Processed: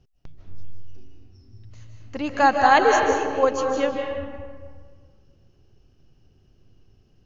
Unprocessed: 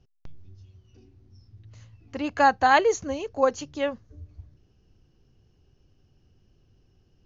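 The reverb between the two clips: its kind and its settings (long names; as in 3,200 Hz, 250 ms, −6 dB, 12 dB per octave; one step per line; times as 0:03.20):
comb and all-pass reverb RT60 1.7 s, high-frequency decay 0.55×, pre-delay 115 ms, DRR 1.5 dB
level +1.5 dB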